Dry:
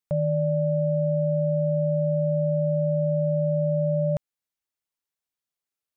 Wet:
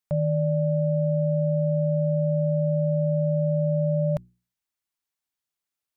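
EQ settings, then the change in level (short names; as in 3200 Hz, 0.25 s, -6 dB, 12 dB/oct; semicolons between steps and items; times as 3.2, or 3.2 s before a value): bell 500 Hz -6.5 dB 0.4 oct; notches 60/120/180/240/300/360 Hz; +1.5 dB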